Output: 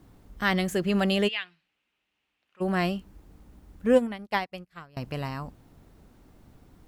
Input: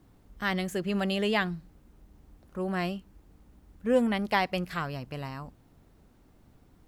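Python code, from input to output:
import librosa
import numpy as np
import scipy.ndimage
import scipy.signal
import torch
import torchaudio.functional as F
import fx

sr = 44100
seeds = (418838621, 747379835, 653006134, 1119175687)

y = fx.bandpass_q(x, sr, hz=2700.0, q=3.7, at=(1.27, 2.6), fade=0.02)
y = fx.upward_expand(y, sr, threshold_db=-44.0, expansion=2.5, at=(3.95, 4.97))
y = F.gain(torch.from_numpy(y), 4.5).numpy()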